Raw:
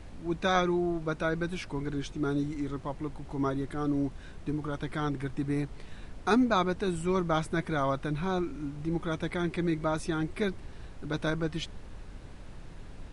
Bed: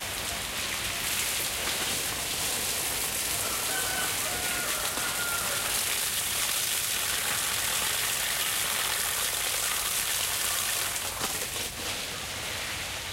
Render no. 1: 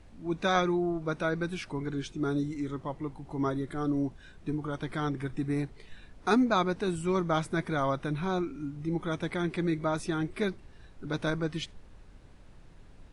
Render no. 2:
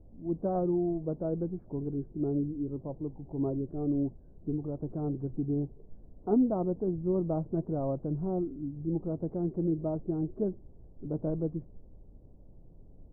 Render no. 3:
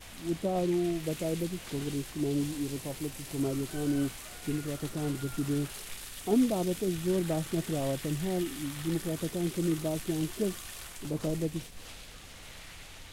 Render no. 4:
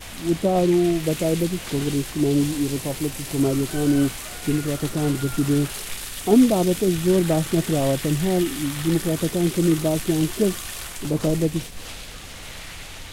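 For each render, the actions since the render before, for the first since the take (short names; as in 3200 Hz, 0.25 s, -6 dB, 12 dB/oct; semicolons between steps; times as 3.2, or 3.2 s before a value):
noise print and reduce 8 dB
Wiener smoothing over 15 samples; inverse Chebyshev low-pass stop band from 2900 Hz, stop band 70 dB
add bed -15.5 dB
gain +10.5 dB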